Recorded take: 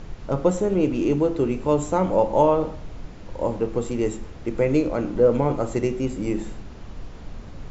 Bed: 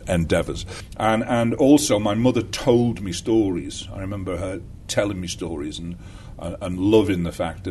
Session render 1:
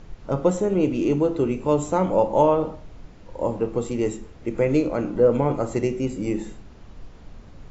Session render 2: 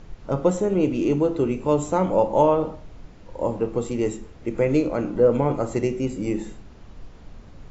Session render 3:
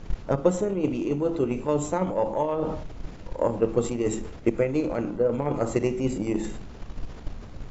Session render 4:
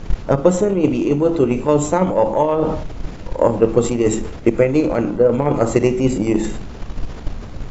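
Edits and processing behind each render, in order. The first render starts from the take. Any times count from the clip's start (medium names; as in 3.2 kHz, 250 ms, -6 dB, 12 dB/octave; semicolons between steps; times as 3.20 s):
noise print and reduce 6 dB
no audible change
reverse; compression 6:1, threshold -26 dBFS, peak gain reduction 13.5 dB; reverse; transient shaper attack +12 dB, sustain +8 dB
trim +9.5 dB; peak limiter -1 dBFS, peak gain reduction 2.5 dB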